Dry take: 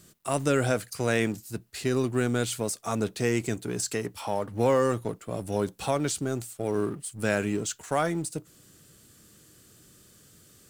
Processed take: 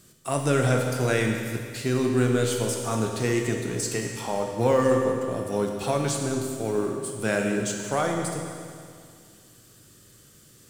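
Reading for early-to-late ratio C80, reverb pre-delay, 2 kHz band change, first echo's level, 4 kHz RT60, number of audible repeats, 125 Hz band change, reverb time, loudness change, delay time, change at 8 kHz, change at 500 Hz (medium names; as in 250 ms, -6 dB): 4.0 dB, 8 ms, +2.5 dB, no echo, 2.1 s, no echo, +4.0 dB, 2.2 s, +3.0 dB, no echo, +2.5 dB, +3.0 dB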